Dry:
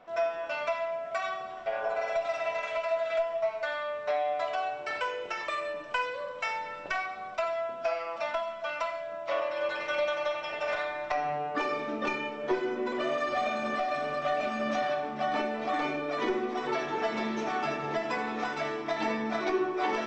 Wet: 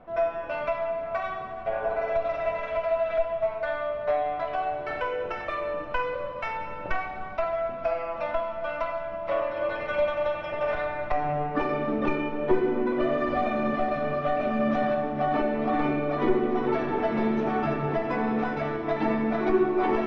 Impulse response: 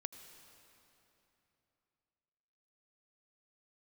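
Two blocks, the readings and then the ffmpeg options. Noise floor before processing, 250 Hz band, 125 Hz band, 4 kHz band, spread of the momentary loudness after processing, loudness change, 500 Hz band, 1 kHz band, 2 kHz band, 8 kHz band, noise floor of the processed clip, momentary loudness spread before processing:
-40 dBFS, +8.5 dB, +12.5 dB, -5.0 dB, 6 LU, +4.0 dB, +4.5 dB, +2.5 dB, -0.5 dB, n/a, -36 dBFS, 4 LU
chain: -filter_complex "[0:a]adynamicsmooth=sensitivity=2:basefreq=5.2k,aemphasis=mode=reproduction:type=riaa[a];[1:a]atrim=start_sample=2205[b];[a][b]afir=irnorm=-1:irlink=0,volume=5.5dB"

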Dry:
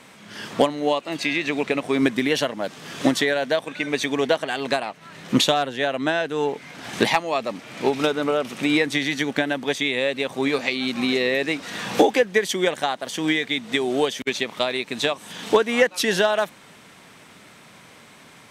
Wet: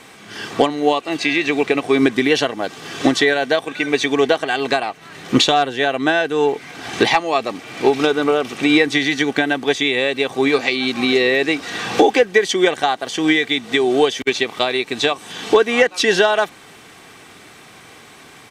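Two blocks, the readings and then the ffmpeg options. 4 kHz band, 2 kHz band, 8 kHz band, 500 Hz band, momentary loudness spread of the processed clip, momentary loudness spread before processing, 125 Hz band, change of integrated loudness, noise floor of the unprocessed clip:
+5.0 dB, +5.5 dB, +3.0 dB, +5.5 dB, 6 LU, 7 LU, +2.5 dB, +5.5 dB, -48 dBFS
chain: -filter_complex "[0:a]acrossover=split=8000[a][b];[b]acompressor=threshold=-55dB:ratio=4:attack=1:release=60[c];[a][c]amix=inputs=2:normalize=0,aecho=1:1:2.6:0.42,alimiter=level_in=6dB:limit=-1dB:release=50:level=0:latency=1,volume=-1dB"

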